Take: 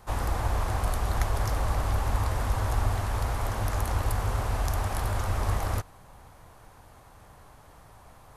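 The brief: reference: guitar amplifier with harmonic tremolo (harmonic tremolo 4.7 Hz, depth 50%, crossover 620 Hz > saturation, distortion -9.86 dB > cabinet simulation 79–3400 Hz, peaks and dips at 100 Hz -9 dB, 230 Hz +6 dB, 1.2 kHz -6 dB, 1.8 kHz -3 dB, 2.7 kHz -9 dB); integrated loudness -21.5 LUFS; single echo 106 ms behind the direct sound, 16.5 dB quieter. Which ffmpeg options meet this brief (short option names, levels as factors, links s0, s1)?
-filter_complex "[0:a]aecho=1:1:106:0.15,acrossover=split=620[s0][s1];[s0]aeval=exprs='val(0)*(1-0.5/2+0.5/2*cos(2*PI*4.7*n/s))':c=same[s2];[s1]aeval=exprs='val(0)*(1-0.5/2-0.5/2*cos(2*PI*4.7*n/s))':c=same[s3];[s2][s3]amix=inputs=2:normalize=0,asoftclip=threshold=0.0355,highpass=79,equalizer=f=100:t=q:w=4:g=-9,equalizer=f=230:t=q:w=4:g=6,equalizer=f=1200:t=q:w=4:g=-6,equalizer=f=1800:t=q:w=4:g=-3,equalizer=f=2700:t=q:w=4:g=-9,lowpass=f=3400:w=0.5412,lowpass=f=3400:w=1.3066,volume=8.41"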